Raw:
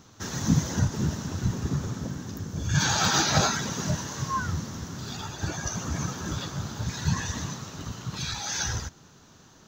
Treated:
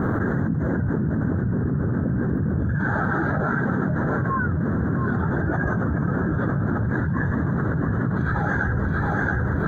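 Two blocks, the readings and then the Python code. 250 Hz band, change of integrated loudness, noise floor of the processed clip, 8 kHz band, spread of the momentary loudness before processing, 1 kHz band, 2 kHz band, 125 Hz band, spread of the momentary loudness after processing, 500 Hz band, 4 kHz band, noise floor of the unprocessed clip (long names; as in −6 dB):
+9.0 dB, +5.0 dB, −24 dBFS, below −30 dB, 13 LU, +4.0 dB, +7.5 dB, +7.0 dB, 1 LU, +9.5 dB, below −25 dB, −54 dBFS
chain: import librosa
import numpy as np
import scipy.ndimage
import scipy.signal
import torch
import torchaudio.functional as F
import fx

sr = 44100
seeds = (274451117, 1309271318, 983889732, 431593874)

y = fx.low_shelf(x, sr, hz=170.0, db=-10.5)
y = fx.rider(y, sr, range_db=4, speed_s=0.5)
y = fx.peak_eq(y, sr, hz=940.0, db=-14.5, octaves=1.5)
y = fx.echo_feedback(y, sr, ms=676, feedback_pct=26, wet_db=-10)
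y = fx.quant_dither(y, sr, seeds[0], bits=10, dither='none')
y = scipy.signal.sosfilt(scipy.signal.ellip(4, 1.0, 40, 1600.0, 'lowpass', fs=sr, output='sos'), y)
y = y + 10.0 ** (-20.5 / 20.0) * np.pad(y, (int(808 * sr / 1000.0), 0))[:len(y)]
y = fx.env_flatten(y, sr, amount_pct=100)
y = y * librosa.db_to_amplitude(2.5)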